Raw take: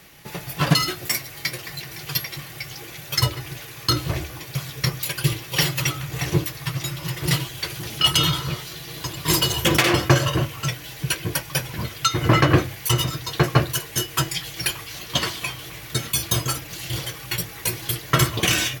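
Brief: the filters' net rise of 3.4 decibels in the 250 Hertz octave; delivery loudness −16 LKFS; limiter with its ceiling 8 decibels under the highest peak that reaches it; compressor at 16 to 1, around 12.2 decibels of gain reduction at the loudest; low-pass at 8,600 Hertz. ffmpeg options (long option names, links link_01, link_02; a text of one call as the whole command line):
ffmpeg -i in.wav -af "lowpass=8600,equalizer=frequency=250:width_type=o:gain=6,acompressor=threshold=-21dB:ratio=16,volume=13.5dB,alimiter=limit=-2.5dB:level=0:latency=1" out.wav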